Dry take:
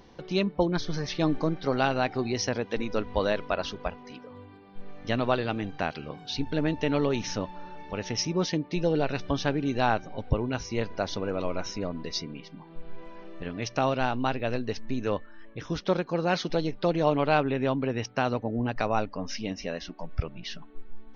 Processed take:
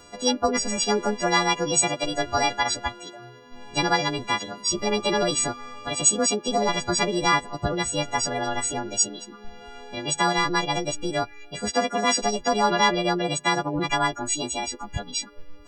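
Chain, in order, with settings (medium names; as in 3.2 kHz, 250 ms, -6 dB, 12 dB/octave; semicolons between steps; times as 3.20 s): partials quantised in pitch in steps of 3 st; speed mistake 33 rpm record played at 45 rpm; trim +3 dB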